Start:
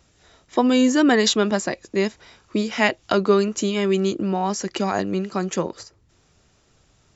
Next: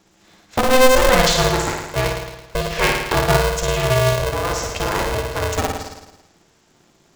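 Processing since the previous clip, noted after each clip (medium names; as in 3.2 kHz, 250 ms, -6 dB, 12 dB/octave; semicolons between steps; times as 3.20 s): on a send: flutter echo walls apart 9.4 m, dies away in 1 s; on the sum: polarity switched at an audio rate 260 Hz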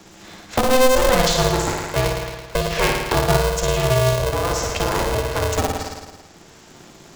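dynamic bell 1.9 kHz, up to -4 dB, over -28 dBFS, Q 0.87; three bands compressed up and down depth 40%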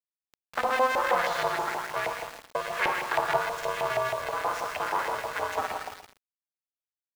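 LFO band-pass saw up 6.3 Hz 760–2100 Hz; small samples zeroed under -37.5 dBFS; bit-crushed delay 125 ms, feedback 35%, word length 7-bit, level -10 dB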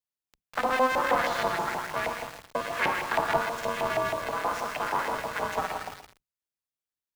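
octave divider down 1 oct, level 0 dB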